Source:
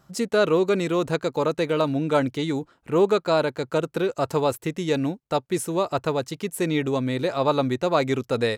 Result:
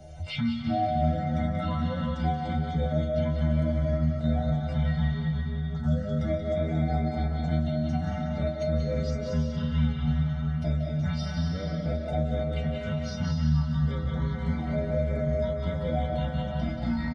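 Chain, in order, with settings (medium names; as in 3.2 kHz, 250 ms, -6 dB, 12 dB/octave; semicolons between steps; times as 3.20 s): coarse spectral quantiser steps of 30 dB; peak limiter -15.5 dBFS, peak gain reduction 8.5 dB; peaking EQ 340 Hz +7 dB 0.23 oct; inharmonic resonator 150 Hz, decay 0.32 s, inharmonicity 0.008; speed mistake 15 ips tape played at 7.5 ips; comb 1.4 ms, depth 76%; repeats whose band climbs or falls 184 ms, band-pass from 3.4 kHz, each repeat -1.4 oct, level -3 dB; reverberation RT60 1.6 s, pre-delay 119 ms, DRR 2 dB; three bands compressed up and down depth 70%; trim +3.5 dB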